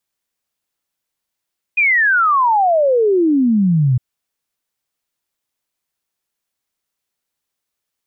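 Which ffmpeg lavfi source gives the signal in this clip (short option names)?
-f lavfi -i "aevalsrc='0.299*clip(min(t,2.21-t)/0.01,0,1)*sin(2*PI*2500*2.21/log(120/2500)*(exp(log(120/2500)*t/2.21)-1))':d=2.21:s=44100"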